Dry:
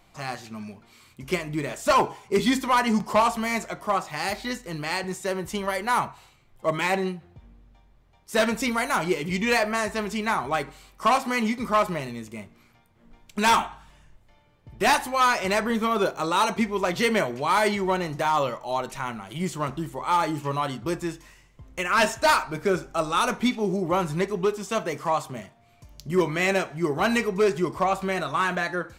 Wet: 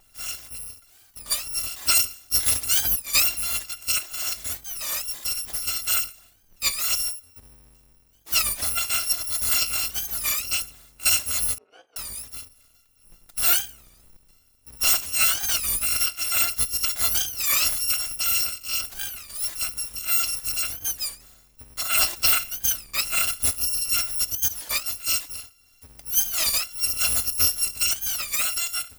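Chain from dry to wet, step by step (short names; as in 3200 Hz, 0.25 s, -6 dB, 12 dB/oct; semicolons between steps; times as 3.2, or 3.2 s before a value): FFT order left unsorted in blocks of 256 samples; 11.58–11.99 ladder band-pass 480 Hz, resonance 65%; record warp 33 1/3 rpm, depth 250 cents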